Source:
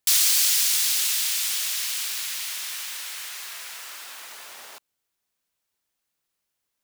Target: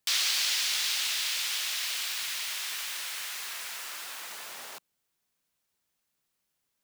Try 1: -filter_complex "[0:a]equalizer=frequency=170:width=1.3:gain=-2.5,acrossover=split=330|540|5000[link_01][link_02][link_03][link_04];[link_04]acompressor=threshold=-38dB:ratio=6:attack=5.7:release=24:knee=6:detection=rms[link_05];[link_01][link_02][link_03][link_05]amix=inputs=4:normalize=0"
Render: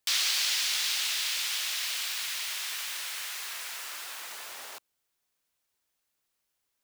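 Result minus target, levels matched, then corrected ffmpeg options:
125 Hz band −6.0 dB
-filter_complex "[0:a]equalizer=frequency=170:width=1.3:gain=5,acrossover=split=330|540|5000[link_01][link_02][link_03][link_04];[link_04]acompressor=threshold=-38dB:ratio=6:attack=5.7:release=24:knee=6:detection=rms[link_05];[link_01][link_02][link_03][link_05]amix=inputs=4:normalize=0"

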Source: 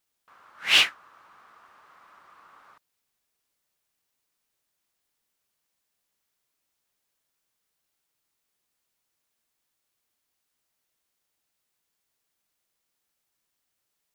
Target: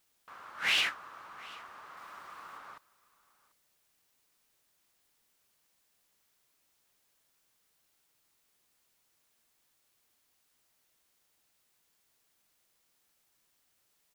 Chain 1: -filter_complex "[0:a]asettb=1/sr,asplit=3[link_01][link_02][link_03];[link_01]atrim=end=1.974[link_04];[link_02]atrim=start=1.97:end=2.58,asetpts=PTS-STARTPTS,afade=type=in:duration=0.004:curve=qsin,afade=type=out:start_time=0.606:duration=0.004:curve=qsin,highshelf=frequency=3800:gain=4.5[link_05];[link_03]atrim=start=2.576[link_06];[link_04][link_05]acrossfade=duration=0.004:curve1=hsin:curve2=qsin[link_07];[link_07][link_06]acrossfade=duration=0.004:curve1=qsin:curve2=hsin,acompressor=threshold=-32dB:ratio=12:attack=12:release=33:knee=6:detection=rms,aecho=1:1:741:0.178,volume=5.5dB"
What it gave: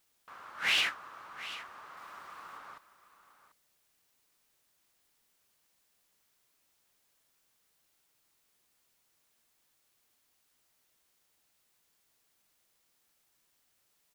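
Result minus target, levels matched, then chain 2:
echo-to-direct +8 dB
-filter_complex "[0:a]asettb=1/sr,asplit=3[link_01][link_02][link_03];[link_01]atrim=end=1.974[link_04];[link_02]atrim=start=1.97:end=2.58,asetpts=PTS-STARTPTS,afade=type=in:duration=0.004:curve=qsin,afade=type=out:start_time=0.606:duration=0.004:curve=qsin,highshelf=frequency=3800:gain=4.5[link_05];[link_03]atrim=start=2.576[link_06];[link_04][link_05]acrossfade=duration=0.004:curve1=hsin:curve2=qsin[link_07];[link_07][link_06]acrossfade=duration=0.004:curve1=qsin:curve2=hsin,acompressor=threshold=-32dB:ratio=12:attack=12:release=33:knee=6:detection=rms,aecho=1:1:741:0.0708,volume=5.5dB"

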